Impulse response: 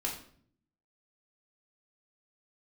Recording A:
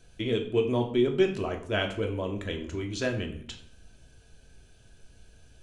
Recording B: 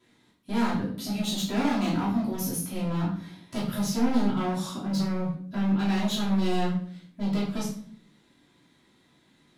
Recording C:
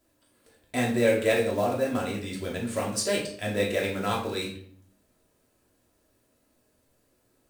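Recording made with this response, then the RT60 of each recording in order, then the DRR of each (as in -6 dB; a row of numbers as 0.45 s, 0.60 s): C; 0.55 s, 0.55 s, 0.55 s; 2.5 dB, -12.0 dB, -3.0 dB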